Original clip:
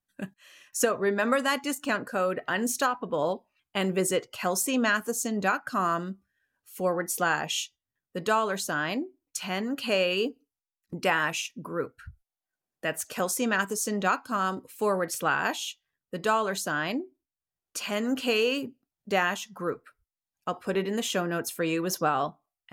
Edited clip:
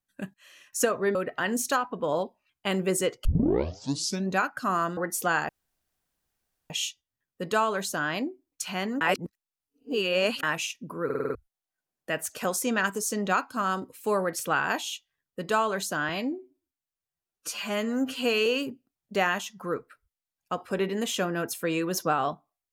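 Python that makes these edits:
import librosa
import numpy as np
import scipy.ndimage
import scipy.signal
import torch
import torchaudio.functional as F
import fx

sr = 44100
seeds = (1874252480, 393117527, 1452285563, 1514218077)

y = fx.edit(x, sr, fx.cut(start_s=1.15, length_s=1.1),
    fx.tape_start(start_s=4.35, length_s=1.11),
    fx.cut(start_s=6.07, length_s=0.86),
    fx.insert_room_tone(at_s=7.45, length_s=1.21),
    fx.reverse_span(start_s=9.76, length_s=1.42),
    fx.stutter_over(start_s=11.8, slice_s=0.05, count=6),
    fx.stretch_span(start_s=16.84, length_s=1.58, factor=1.5), tone=tone)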